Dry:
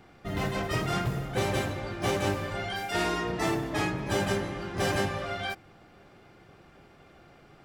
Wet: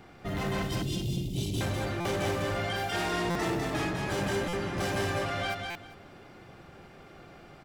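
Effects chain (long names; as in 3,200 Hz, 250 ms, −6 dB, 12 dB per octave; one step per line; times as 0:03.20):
0:00.62–0:01.61: elliptic band-stop filter 330–3,100 Hz
in parallel at −0.5 dB: brickwall limiter −25 dBFS, peak gain reduction 10.5 dB
on the sum: soft clipping −24 dBFS, distortion −12 dB
on a send: repeating echo 200 ms, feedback 19%, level −4 dB
on the sum: buffer that repeats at 0:02.00/0:03.30/0:04.48/0:05.70, samples 256, times 8
level −3 dB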